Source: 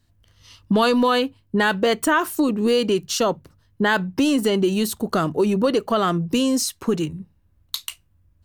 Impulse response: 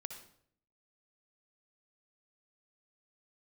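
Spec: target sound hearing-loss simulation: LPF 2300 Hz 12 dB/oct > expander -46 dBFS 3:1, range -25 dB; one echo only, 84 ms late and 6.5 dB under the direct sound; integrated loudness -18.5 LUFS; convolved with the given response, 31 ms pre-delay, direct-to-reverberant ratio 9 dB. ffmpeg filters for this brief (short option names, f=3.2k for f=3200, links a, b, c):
-filter_complex "[0:a]aecho=1:1:84:0.473,asplit=2[a][b];[1:a]atrim=start_sample=2205,adelay=31[c];[b][c]afir=irnorm=-1:irlink=0,volume=-6dB[d];[a][d]amix=inputs=2:normalize=0,lowpass=2.3k,agate=range=-25dB:threshold=-46dB:ratio=3,volume=1.5dB"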